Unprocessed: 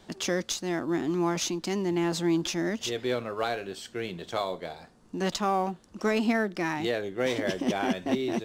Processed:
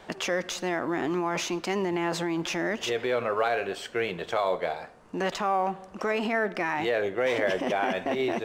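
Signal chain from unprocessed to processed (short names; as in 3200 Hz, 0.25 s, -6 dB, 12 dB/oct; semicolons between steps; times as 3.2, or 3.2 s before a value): on a send at -22.5 dB: reverb RT60 0.95 s, pre-delay 47 ms; on the sum: limiter -24 dBFS, peak gain reduction 10.5 dB; band shelf 1100 Hz +9.5 dB 3 oct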